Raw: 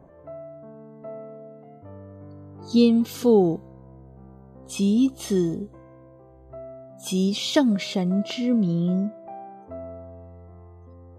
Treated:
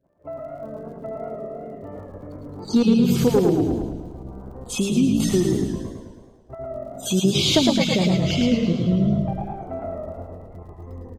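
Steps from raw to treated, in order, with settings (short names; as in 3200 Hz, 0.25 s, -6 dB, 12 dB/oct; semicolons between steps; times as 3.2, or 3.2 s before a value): random spectral dropouts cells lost 25%; in parallel at -2.5 dB: level quantiser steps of 16 dB; on the sum: crackle 29/s -50 dBFS; gate -46 dBFS, range -26 dB; on a send: frequency-shifting echo 0.115 s, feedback 45%, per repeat -46 Hz, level -7 dB; on the sum: hard clip -7 dBFS, distortion -21 dB; compressor 6:1, threshold -19 dBFS, peak gain reduction 9.5 dB; notches 50/100/150/200 Hz; warbling echo 0.108 s, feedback 57%, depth 113 cents, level -5 dB; gain +4 dB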